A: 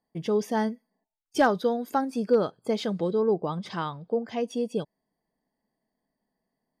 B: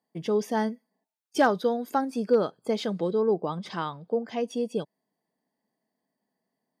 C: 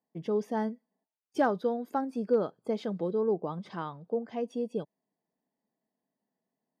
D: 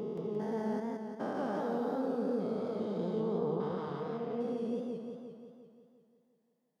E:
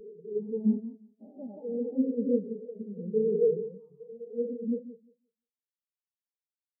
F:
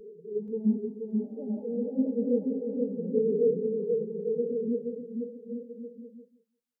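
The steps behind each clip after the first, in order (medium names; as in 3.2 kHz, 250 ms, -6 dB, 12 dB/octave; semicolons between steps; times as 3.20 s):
high-pass 150 Hz
treble shelf 2.1 kHz -11.5 dB; trim -3.5 dB
spectrogram pixelated in time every 400 ms; modulated delay 175 ms, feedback 61%, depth 111 cents, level -3 dB
spectral contrast expander 4:1; trim +7 dB
bouncing-ball echo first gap 480 ms, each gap 0.75×, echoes 5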